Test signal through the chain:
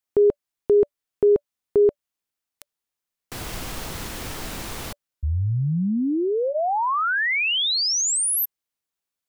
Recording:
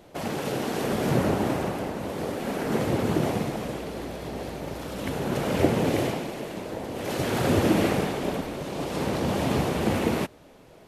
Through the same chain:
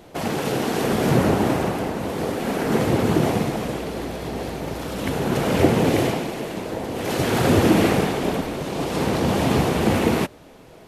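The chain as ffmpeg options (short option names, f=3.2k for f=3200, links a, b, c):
-filter_complex "[0:a]bandreject=f=580:w=19,asplit=2[a][b];[b]asoftclip=type=hard:threshold=-17dB,volume=-9dB[c];[a][c]amix=inputs=2:normalize=0,volume=3dB"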